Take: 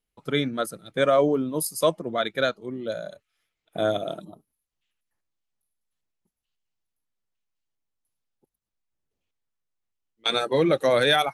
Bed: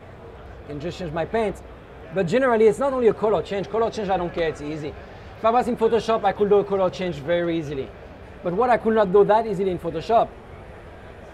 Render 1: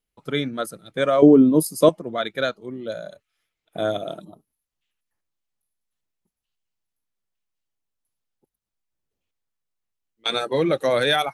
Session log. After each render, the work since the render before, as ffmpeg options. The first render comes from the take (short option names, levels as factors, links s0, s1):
-filter_complex "[0:a]asettb=1/sr,asplit=3[s0][s1][s2];[s0]atrim=end=1.224[s3];[s1]atrim=start=1.22:end=1.89,asetpts=PTS-STARTPTS,afade=t=in:d=0.004:c=qsin,afade=t=out:st=0.666:d=0.004:c=qsin,equalizer=f=260:w=0.63:g=14[s4];[s2]atrim=start=1.886[s5];[s3][s4]acrossfade=d=0.004:c1=hsin:c2=qsin[s6];[s6][s5]acrossfade=d=0.004:c1=qsin:c2=hsin"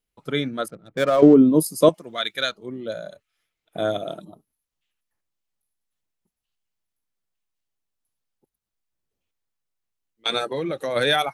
-filter_complex "[0:a]asettb=1/sr,asplit=3[s0][s1][s2];[s0]atrim=end=0.684[s3];[s1]atrim=start=0.68:end=1.34,asetpts=PTS-STARTPTS,afade=t=in:d=0.004:c=qsin,afade=t=out:st=0.656:d=0.004:c=qsin,adynamicsmooth=sensitivity=7:basefreq=1100[s4];[s2]atrim=start=1.336[s5];[s3][s4]acrossfade=d=0.004:c1=hsin:c2=qsin[s6];[s6][s5]acrossfade=d=0.004:c1=qsin:c2=hsin,asettb=1/sr,asplit=3[s7][s8][s9];[s7]atrim=end=1.944[s10];[s8]atrim=start=1.94:end=2.52,asetpts=PTS-STARTPTS,afade=t=in:d=0.004:c=qsin,afade=t=out:st=0.576:d=0.004:c=qsin,tiltshelf=f=1500:g=-9[s11];[s9]atrim=start=2.516[s12];[s10][s11]acrossfade=d=0.004:c1=hsin:c2=qsin[s13];[s13][s12]acrossfade=d=0.004:c1=qsin:c2=hsin,asplit=3[s14][s15][s16];[s14]afade=t=out:st=10.46:d=0.02[s17];[s15]acompressor=threshold=0.0562:ratio=3:attack=3.2:release=140:knee=1:detection=peak,afade=t=in:st=10.46:d=0.02,afade=t=out:st=10.95:d=0.02[s18];[s16]afade=t=in:st=10.95:d=0.02[s19];[s17][s18][s19]amix=inputs=3:normalize=0"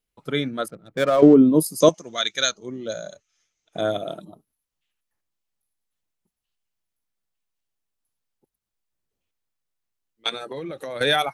-filter_complex "[0:a]asettb=1/sr,asplit=3[s0][s1][s2];[s0]atrim=end=1.804[s3];[s1]atrim=start=1.8:end=3.81,asetpts=PTS-STARTPTS,afade=t=in:d=0.004:c=qsin,afade=t=out:st=2.006:d=0.004:c=qsin,lowpass=f=6300:t=q:w=11[s4];[s2]atrim=start=3.806[s5];[s3][s4]acrossfade=d=0.004:c1=hsin:c2=qsin[s6];[s6][s5]acrossfade=d=0.004:c1=qsin:c2=hsin,asettb=1/sr,asplit=3[s7][s8][s9];[s7]atrim=end=10.294[s10];[s8]atrim=start=10.29:end=11.01,asetpts=PTS-STARTPTS,afade=t=in:d=0.004:c=qsin,afade=t=out:st=0.716:d=0.004:c=qsin,acompressor=threshold=0.0355:ratio=6:attack=3.2:release=140:knee=1:detection=peak[s11];[s9]atrim=start=11.006[s12];[s10][s11]acrossfade=d=0.004:c1=hsin:c2=qsin[s13];[s13][s12]acrossfade=d=0.004:c1=qsin:c2=hsin"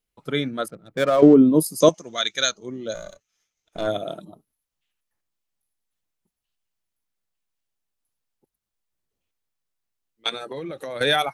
-filter_complex "[0:a]asplit=3[s0][s1][s2];[s0]afade=t=out:st=2.94:d=0.02[s3];[s1]aeval=exprs='if(lt(val(0),0),0.447*val(0),val(0))':c=same,afade=t=in:st=2.94:d=0.02,afade=t=out:st=3.86:d=0.02[s4];[s2]afade=t=in:st=3.86:d=0.02[s5];[s3][s4][s5]amix=inputs=3:normalize=0"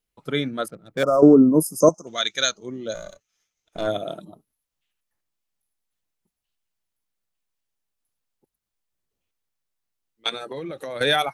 -filter_complex "[0:a]asettb=1/sr,asplit=3[s0][s1][s2];[s0]atrim=end=1.034[s3];[s1]atrim=start=1.03:end=2.07,asetpts=PTS-STARTPTS,afade=t=in:d=0.004:c=qsin,afade=t=out:st=1.036:d=0.004:c=qsin,asuperstop=centerf=2700:order=20:qfactor=0.74[s4];[s2]atrim=start=2.066[s5];[s3][s4]acrossfade=d=0.004:c1=hsin:c2=qsin[s6];[s6][s5]acrossfade=d=0.004:c1=qsin:c2=hsin"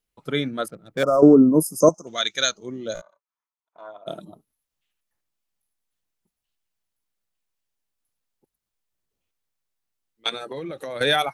-filter_complex "[0:a]asplit=3[s0][s1][s2];[s0]afade=t=out:st=3:d=0.02[s3];[s1]bandpass=f=1000:t=q:w=6.6,afade=t=in:st=3:d=0.02,afade=t=out:st=4.06:d=0.02[s4];[s2]afade=t=in:st=4.06:d=0.02[s5];[s3][s4][s5]amix=inputs=3:normalize=0"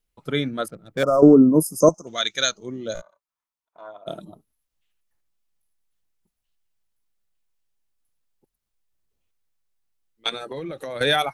-af "lowshelf=f=70:g=9.5"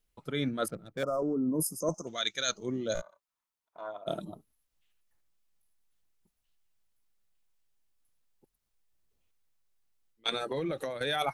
-af "alimiter=limit=0.299:level=0:latency=1:release=39,areverse,acompressor=threshold=0.0447:ratio=16,areverse"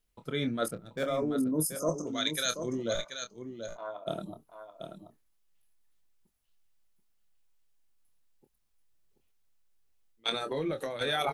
-filter_complex "[0:a]asplit=2[s0][s1];[s1]adelay=26,volume=0.355[s2];[s0][s2]amix=inputs=2:normalize=0,aecho=1:1:733:0.376"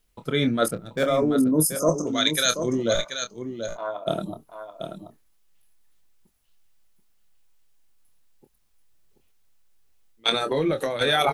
-af "volume=2.82"